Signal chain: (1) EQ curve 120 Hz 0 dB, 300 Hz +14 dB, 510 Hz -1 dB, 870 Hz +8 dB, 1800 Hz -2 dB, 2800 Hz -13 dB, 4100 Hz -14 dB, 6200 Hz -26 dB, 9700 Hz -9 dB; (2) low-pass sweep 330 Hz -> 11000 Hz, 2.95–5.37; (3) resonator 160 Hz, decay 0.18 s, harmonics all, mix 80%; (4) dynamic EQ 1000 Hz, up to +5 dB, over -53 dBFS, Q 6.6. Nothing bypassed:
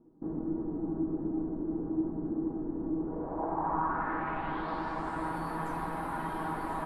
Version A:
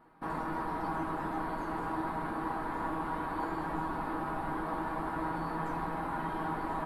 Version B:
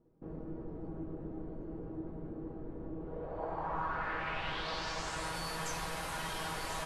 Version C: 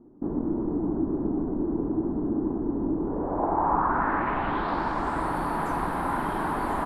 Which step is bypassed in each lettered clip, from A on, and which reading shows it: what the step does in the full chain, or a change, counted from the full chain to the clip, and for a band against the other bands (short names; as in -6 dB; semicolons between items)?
2, loudness change -1.5 LU; 1, momentary loudness spread change +4 LU; 3, loudness change +7.0 LU